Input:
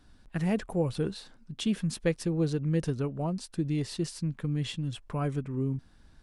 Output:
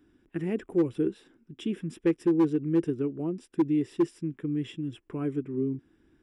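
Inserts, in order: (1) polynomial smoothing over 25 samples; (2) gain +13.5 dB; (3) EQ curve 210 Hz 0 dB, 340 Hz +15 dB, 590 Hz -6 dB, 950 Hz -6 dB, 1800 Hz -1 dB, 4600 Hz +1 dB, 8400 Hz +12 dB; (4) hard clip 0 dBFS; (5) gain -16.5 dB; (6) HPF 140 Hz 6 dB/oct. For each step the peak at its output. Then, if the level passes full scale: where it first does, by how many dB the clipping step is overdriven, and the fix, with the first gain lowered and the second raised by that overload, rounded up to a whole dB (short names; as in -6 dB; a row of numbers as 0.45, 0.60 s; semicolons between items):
-15.5, -2.0, +5.0, 0.0, -16.5, -14.5 dBFS; step 3, 5.0 dB; step 2 +8.5 dB, step 5 -11.5 dB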